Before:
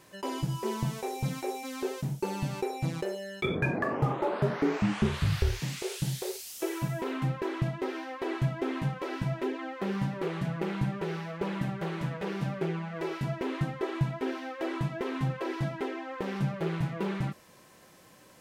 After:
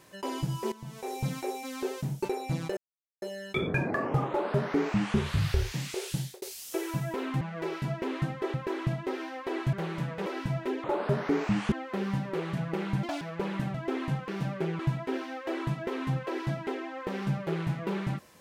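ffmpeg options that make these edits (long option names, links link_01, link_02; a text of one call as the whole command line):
ffmpeg -i in.wav -filter_complex "[0:a]asplit=16[link_01][link_02][link_03][link_04][link_05][link_06][link_07][link_08][link_09][link_10][link_11][link_12][link_13][link_14][link_15][link_16];[link_01]atrim=end=0.72,asetpts=PTS-STARTPTS,afade=type=out:start_time=0.716:duration=0.004:curve=hsin:silence=0.16788[link_17];[link_02]atrim=start=0.72:end=2.252,asetpts=PTS-STARTPTS,afade=type=in:duration=0.4:curve=qua:silence=0.16788[link_18];[link_03]atrim=start=2.578:end=3.1,asetpts=PTS-STARTPTS,afade=type=out:start_time=0.518:duration=0.004:curve=hsin,apad=pad_dur=0.45[link_19];[link_04]atrim=start=3.1:end=6.3,asetpts=PTS-STARTPTS,afade=type=in:duration=0.004:curve=hsin,afade=type=out:start_time=2.93:duration=0.27[link_20];[link_05]atrim=start=6.3:end=7.292,asetpts=PTS-STARTPTS,afade=type=in:duration=0.004:curve=hsin[link_21];[link_06]atrim=start=12.798:end=13.932[link_22];[link_07]atrim=start=7.288:end=8.482[link_23];[link_08]atrim=start=11.758:end=12.292[link_24];[link_09]atrim=start=9.018:end=9.602[link_25];[link_10]atrim=start=4.168:end=5.052[link_26];[link_11]atrim=start=9.598:end=10.914[link_27];[link_12]atrim=start=10.91:end=11.23,asetpts=PTS-STARTPTS,asetrate=77175,aresample=44100[link_28];[link_13]atrim=start=11.226:end=11.762[link_29];[link_14]atrim=start=8.478:end=9.022[link_30];[link_15]atrim=start=12.288:end=12.802[link_31];[link_16]atrim=start=13.928[link_32];[link_17][link_18]concat=n=2:v=0:a=1[link_33];[link_19][link_20][link_21]concat=n=3:v=0:a=1[link_34];[link_33][link_34]acrossfade=duration=0.004:curve1=hsin:curve2=hsin[link_35];[link_35][link_22]acrossfade=duration=0.004:curve1=hsin:curve2=hsin[link_36];[link_36][link_23]acrossfade=duration=0.004:curve1=hsin:curve2=hsin[link_37];[link_37][link_24]acrossfade=duration=0.004:curve1=hsin:curve2=hsin[link_38];[link_38][link_25]acrossfade=duration=0.004:curve1=hsin:curve2=hsin[link_39];[link_39][link_26]acrossfade=duration=0.004:curve1=hsin:curve2=hsin[link_40];[link_40][link_27]acrossfade=duration=0.004:curve1=hsin:curve2=hsin[link_41];[link_41][link_28]acrossfade=duration=0.004:curve1=hsin:curve2=hsin[link_42];[link_42][link_29]acrossfade=duration=0.004:curve1=hsin:curve2=hsin[link_43];[link_43][link_30]acrossfade=duration=0.004:curve1=hsin:curve2=hsin[link_44];[link_44][link_31]acrossfade=duration=0.004:curve1=hsin:curve2=hsin[link_45];[link_45][link_32]acrossfade=duration=0.004:curve1=hsin:curve2=hsin" out.wav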